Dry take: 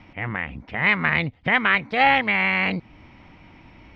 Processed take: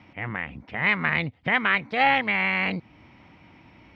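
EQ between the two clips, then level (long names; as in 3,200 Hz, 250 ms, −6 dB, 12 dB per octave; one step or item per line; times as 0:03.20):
high-pass filter 77 Hz
−3.0 dB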